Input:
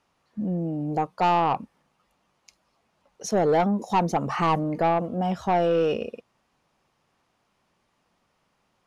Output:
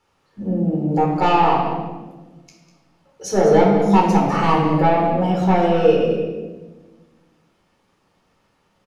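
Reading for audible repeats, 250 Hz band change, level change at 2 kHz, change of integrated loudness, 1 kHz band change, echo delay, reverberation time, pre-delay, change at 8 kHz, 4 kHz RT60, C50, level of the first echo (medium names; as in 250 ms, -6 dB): 1, +9.0 dB, +6.5 dB, +7.0 dB, +6.0 dB, 198 ms, 1.3 s, 11 ms, +5.0 dB, 0.90 s, 2.5 dB, -11.5 dB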